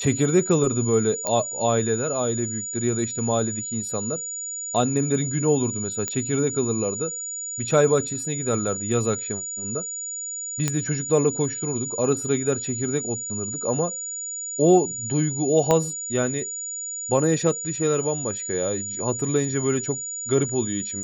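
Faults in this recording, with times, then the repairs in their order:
whistle 6,900 Hz −29 dBFS
0:01.27: click −10 dBFS
0:06.08: click −12 dBFS
0:10.68: click −8 dBFS
0:15.71: click −7 dBFS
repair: click removal
notch filter 6,900 Hz, Q 30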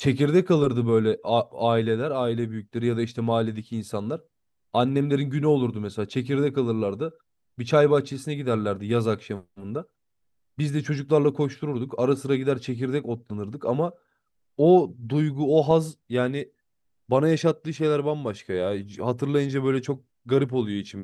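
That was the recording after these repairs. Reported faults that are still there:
0:15.71: click

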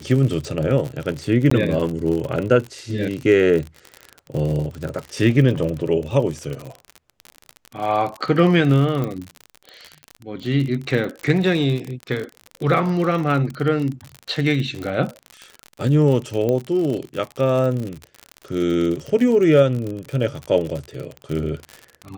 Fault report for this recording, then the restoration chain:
surface crackle 55 per second −25 dBFS
0:01.50–0:01.51: drop-out 14 ms
0:09.04: click −14 dBFS
0:16.49: click −11 dBFS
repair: click removal
repair the gap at 0:01.50, 14 ms

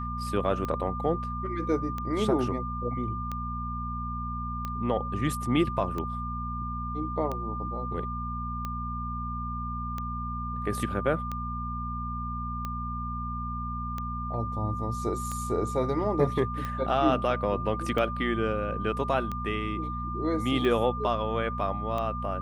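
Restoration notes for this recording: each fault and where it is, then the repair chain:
mains hum 60 Hz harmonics 4 −35 dBFS
scratch tick 45 rpm −20 dBFS
whistle 1,200 Hz −34 dBFS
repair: click removal
hum removal 60 Hz, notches 4
notch filter 1,200 Hz, Q 30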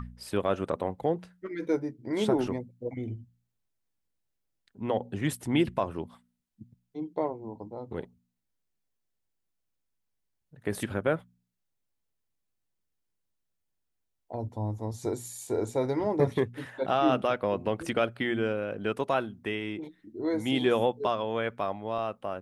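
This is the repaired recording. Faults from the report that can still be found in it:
none of them is left

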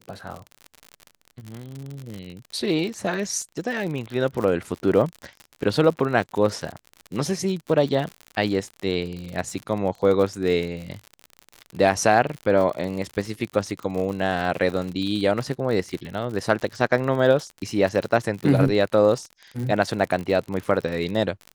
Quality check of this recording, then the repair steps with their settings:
surface crackle 59 per second −29 dBFS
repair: click removal

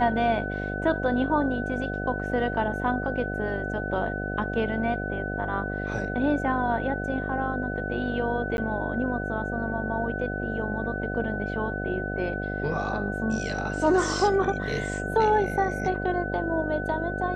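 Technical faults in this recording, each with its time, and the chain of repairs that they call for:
mains buzz 50 Hz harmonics 15 −32 dBFS
whistle 1,500 Hz −33 dBFS
0:08.57–0:08.58: drop-out 11 ms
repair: notch filter 1,500 Hz, Q 30
hum removal 50 Hz, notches 15
repair the gap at 0:08.57, 11 ms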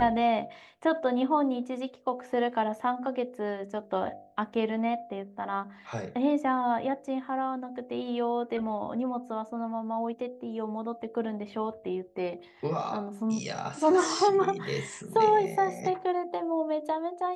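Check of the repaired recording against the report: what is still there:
none of them is left

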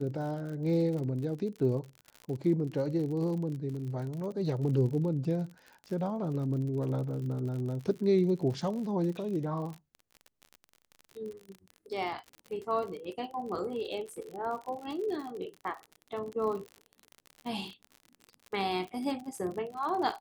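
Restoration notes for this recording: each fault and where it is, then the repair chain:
surface crackle 53 per second −38 dBFS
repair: click removal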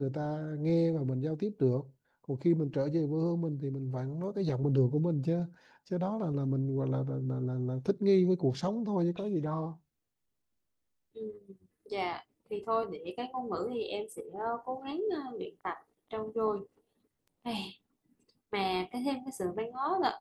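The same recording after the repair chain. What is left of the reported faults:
none of them is left

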